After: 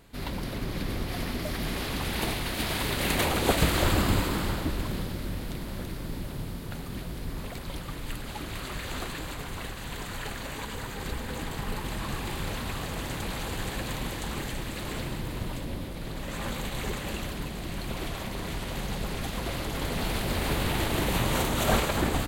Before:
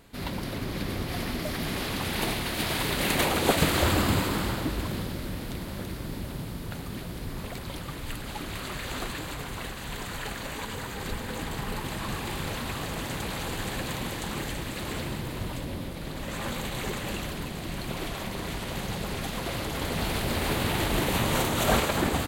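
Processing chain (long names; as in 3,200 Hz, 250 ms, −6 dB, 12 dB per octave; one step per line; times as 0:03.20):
sub-octave generator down 2 octaves, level −1 dB
level −1.5 dB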